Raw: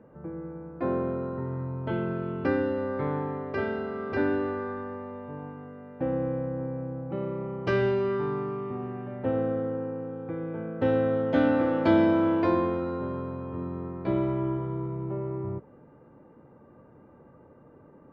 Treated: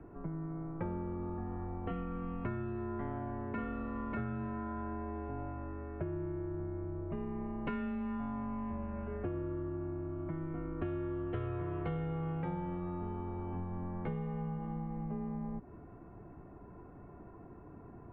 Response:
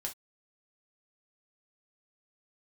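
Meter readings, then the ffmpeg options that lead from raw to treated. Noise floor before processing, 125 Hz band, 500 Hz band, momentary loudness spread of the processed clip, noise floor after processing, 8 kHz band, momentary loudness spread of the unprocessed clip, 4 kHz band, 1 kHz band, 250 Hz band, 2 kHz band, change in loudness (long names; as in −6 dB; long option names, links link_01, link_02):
−54 dBFS, −5.5 dB, −14.5 dB, 16 LU, −53 dBFS, can't be measured, 13 LU, below −15 dB, −9.0 dB, −10.0 dB, −14.5 dB, −10.5 dB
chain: -af "highpass=frequency=190:width_type=q:width=0.5412,highpass=frequency=190:width_type=q:width=1.307,lowpass=frequency=3200:width_type=q:width=0.5176,lowpass=frequency=3200:width_type=q:width=0.7071,lowpass=frequency=3200:width_type=q:width=1.932,afreqshift=-170,acompressor=threshold=-39dB:ratio=6,volume=3dB"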